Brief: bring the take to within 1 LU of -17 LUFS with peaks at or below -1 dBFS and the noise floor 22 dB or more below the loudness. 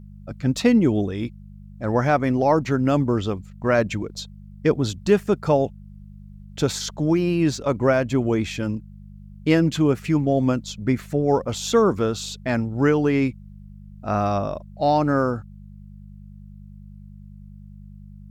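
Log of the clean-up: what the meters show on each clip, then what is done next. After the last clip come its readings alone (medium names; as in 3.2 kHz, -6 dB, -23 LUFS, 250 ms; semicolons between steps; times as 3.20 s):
hum 50 Hz; highest harmonic 200 Hz; hum level -40 dBFS; loudness -22.0 LUFS; peak level -5.0 dBFS; loudness target -17.0 LUFS
-> de-hum 50 Hz, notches 4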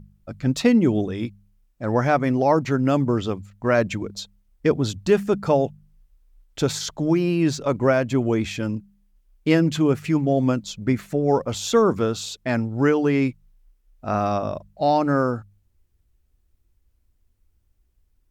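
hum not found; loudness -22.0 LUFS; peak level -4.5 dBFS; loudness target -17.0 LUFS
-> trim +5 dB; peak limiter -1 dBFS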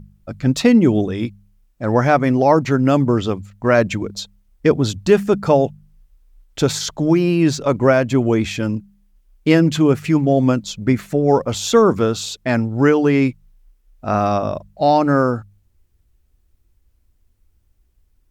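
loudness -17.0 LUFS; peak level -1.0 dBFS; noise floor -61 dBFS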